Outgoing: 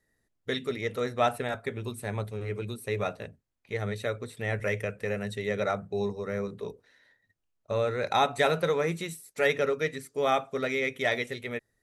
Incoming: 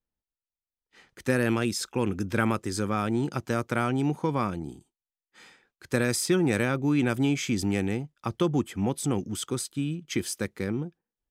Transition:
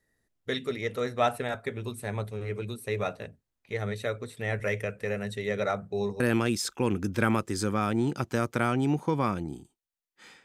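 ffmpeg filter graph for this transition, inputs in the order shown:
-filter_complex "[0:a]apad=whole_dur=10.44,atrim=end=10.44,atrim=end=6.202[a];[1:a]atrim=start=1.358:end=5.6[b];[a][b]acrossfade=d=0.004:c1=hsin:c2=hsin"

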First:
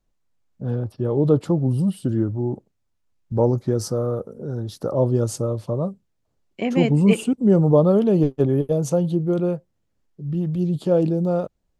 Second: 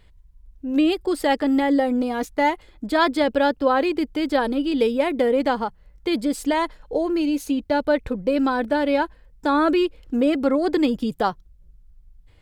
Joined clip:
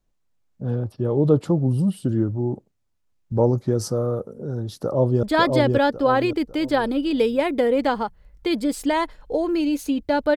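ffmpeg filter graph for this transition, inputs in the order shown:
-filter_complex "[0:a]apad=whole_dur=10.36,atrim=end=10.36,atrim=end=5.232[a];[1:a]atrim=start=2.838:end=7.97[b];[a][b]acrossfade=d=0.004:c1=hsin:c2=hsin,asplit=2[c][d];[d]afade=t=in:st=4.82:d=0.01,afade=t=out:st=5.23:d=0.01,aecho=0:1:550|1100|1650|2200|2750:0.749894|0.262463|0.091862|0.0321517|0.0112531[e];[c][e]amix=inputs=2:normalize=0"

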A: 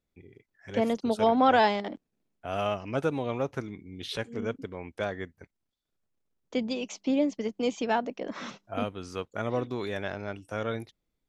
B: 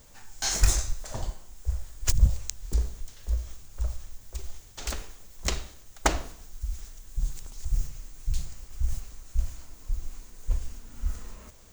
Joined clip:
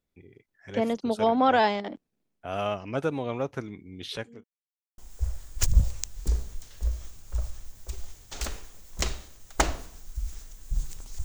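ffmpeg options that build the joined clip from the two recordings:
-filter_complex "[0:a]apad=whole_dur=11.24,atrim=end=11.24,asplit=2[a][b];[a]atrim=end=4.44,asetpts=PTS-STARTPTS,afade=t=out:st=4.03:d=0.41:c=qsin[c];[b]atrim=start=4.44:end=4.98,asetpts=PTS-STARTPTS,volume=0[d];[1:a]atrim=start=1.44:end=7.7,asetpts=PTS-STARTPTS,afade=t=in:d=0.004:c=hsin[e];[c][d][e]concat=n=3:v=0:a=1"

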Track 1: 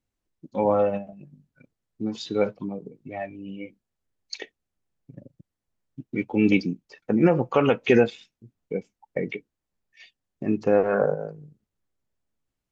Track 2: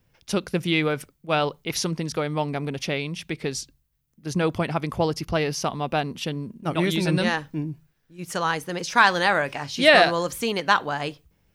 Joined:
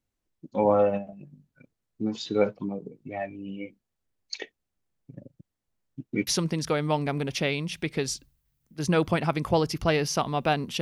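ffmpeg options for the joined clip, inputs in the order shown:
-filter_complex "[0:a]apad=whole_dur=10.81,atrim=end=10.81,atrim=end=6.272[a];[1:a]atrim=start=1.738:end=6.28[b];[a][b]acrossfade=d=0.004:c1=hsin:c2=hsin"

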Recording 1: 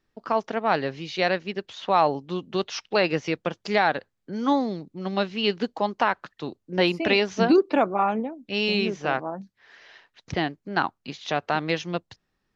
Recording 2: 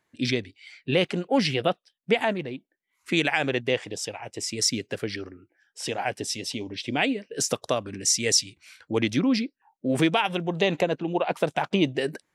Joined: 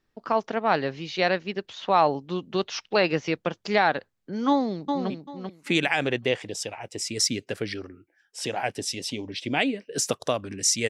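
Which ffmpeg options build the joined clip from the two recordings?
-filter_complex "[0:a]apad=whole_dur=10.89,atrim=end=10.89,atrim=end=5.102[a];[1:a]atrim=start=2.518:end=8.31[b];[a][b]acrossfade=d=0.004:c1=hsin:c2=hsin,asplit=2[c][d];[d]afade=t=in:st=4.49:d=0.01,afade=t=out:st=5.1:d=0.01,aecho=0:1:390|780|1170:0.562341|0.112468|0.0224937[e];[c][e]amix=inputs=2:normalize=0"

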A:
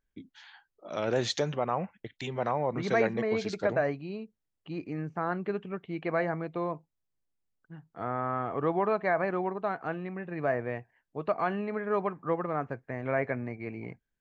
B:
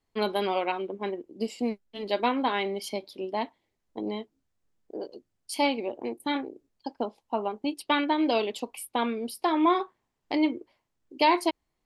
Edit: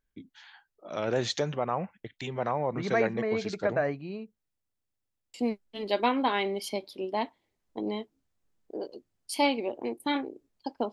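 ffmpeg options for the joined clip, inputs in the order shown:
-filter_complex "[0:a]apad=whole_dur=10.92,atrim=end=10.92,asplit=7[a][b][c][d][e][f][g];[a]atrim=end=4.622[h];[b]atrim=start=4.498:end=4.622[i];[c]atrim=start=4.498:end=4.622[j];[d]atrim=start=4.498:end=4.622[k];[e]atrim=start=4.498:end=4.622[l];[f]atrim=start=4.498:end=4.622[m];[g]atrim=start=4.498:end=4.622[n];[1:a]atrim=start=1.538:end=7.12[o];[h][i]acrossfade=d=0.004:c1=hsin:c2=hsin[p];[p][j]acrossfade=d=0.004:c1=hsin:c2=hsin[q];[q][k]acrossfade=d=0.004:c1=hsin:c2=hsin[r];[r][l]acrossfade=d=0.004:c1=hsin:c2=hsin[s];[s][m]acrossfade=d=0.004:c1=hsin:c2=hsin[t];[t][n]acrossfade=d=0.004:c1=hsin:c2=hsin[u];[u][o]acrossfade=d=0.004:c1=hsin:c2=hsin"

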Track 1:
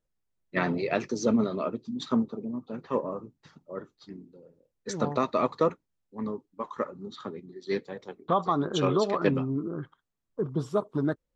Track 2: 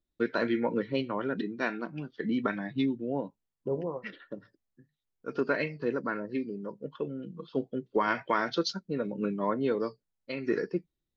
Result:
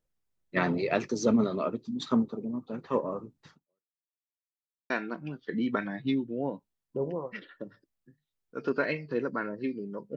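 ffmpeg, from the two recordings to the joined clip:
-filter_complex "[0:a]apad=whole_dur=10.16,atrim=end=10.16,asplit=2[a][b];[a]atrim=end=4,asetpts=PTS-STARTPTS,afade=t=out:st=3.51:d=0.49:c=exp[c];[b]atrim=start=4:end=4.9,asetpts=PTS-STARTPTS,volume=0[d];[1:a]atrim=start=1.61:end=6.87,asetpts=PTS-STARTPTS,afade=t=in:d=0.004:c=hsin[e];[c][d][e]concat=n=3:v=0:a=1"

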